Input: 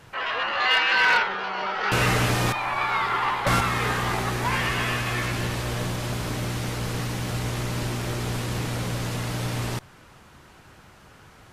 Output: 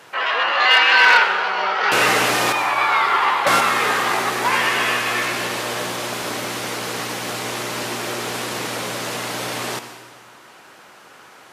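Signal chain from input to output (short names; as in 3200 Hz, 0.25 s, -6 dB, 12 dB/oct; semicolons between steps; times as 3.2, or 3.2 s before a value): HPF 360 Hz 12 dB/oct; on a send: reverb RT60 1.4 s, pre-delay 68 ms, DRR 9.5 dB; on the sum: gain +7 dB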